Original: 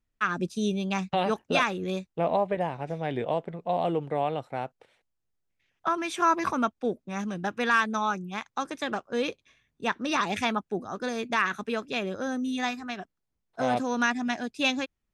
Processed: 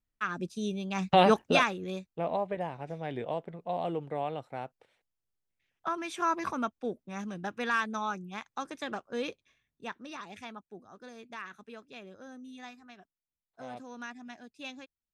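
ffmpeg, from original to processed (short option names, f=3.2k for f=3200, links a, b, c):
-af "volume=6dB,afade=t=in:st=0.94:d=0.26:silence=0.251189,afade=t=out:st=1.2:d=0.57:silence=0.251189,afade=t=out:st=9.29:d=0.88:silence=0.281838"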